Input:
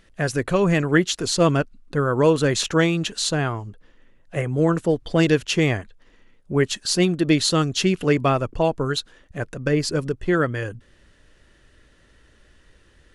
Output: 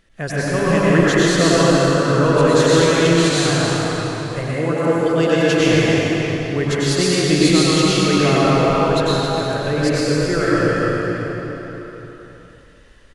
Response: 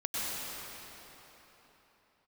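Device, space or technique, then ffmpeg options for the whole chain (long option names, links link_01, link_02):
cave: -filter_complex "[0:a]aecho=1:1:269:0.355[link_01];[1:a]atrim=start_sample=2205[link_02];[link_01][link_02]afir=irnorm=-1:irlink=0,asettb=1/sr,asplit=3[link_03][link_04][link_05];[link_03]atrim=end=4.544[link_06];[link_04]atrim=start=4.54:end=5.6,asetpts=PTS-STARTPTS,afade=type=in:duration=0.004:curve=qsin,afade=type=out:start_time=1.056:duration=0.004:curve=qsin,highpass=frequency=180:poles=1[link_07];[link_05]atrim=start=5.596[link_08];[link_06][link_07]acrossfade=duration=0.004:curve1=hsin:curve2=qsin[link_09];[link_09][link_08]acrossfade=duration=0.004:curve1=qsin:curve2=hsin,volume=-1.5dB"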